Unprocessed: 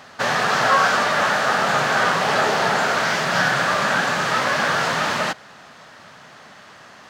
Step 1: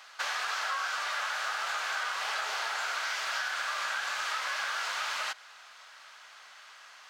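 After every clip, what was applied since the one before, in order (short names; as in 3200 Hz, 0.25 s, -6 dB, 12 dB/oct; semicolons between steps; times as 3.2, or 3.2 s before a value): HPF 1300 Hz 12 dB/oct; notch 1800 Hz, Q 12; compressor, threshold -26 dBFS, peak gain reduction 9.5 dB; gain -4 dB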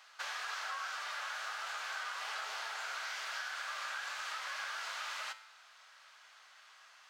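low shelf 330 Hz -6 dB; resonator 110 Hz, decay 0.64 s, harmonics all, mix 60%; gain -1 dB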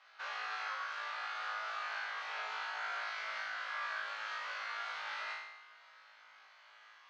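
air absorption 210 m; on a send: flutter echo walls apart 3.2 m, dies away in 0.89 s; on the sum: gain -3.5 dB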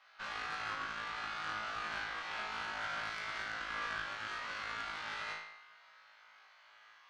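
added harmonics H 3 -21 dB, 4 -19 dB, 7 -45 dB, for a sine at -28 dBFS; gain +2 dB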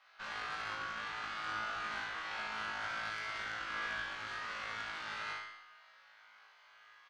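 feedback echo 65 ms, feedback 46%, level -6 dB; gain -1.5 dB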